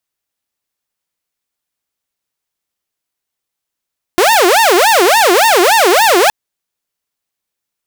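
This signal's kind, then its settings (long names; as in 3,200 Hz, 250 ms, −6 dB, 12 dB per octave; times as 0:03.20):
siren wail 345–920 Hz 3.5 per second saw −4 dBFS 2.12 s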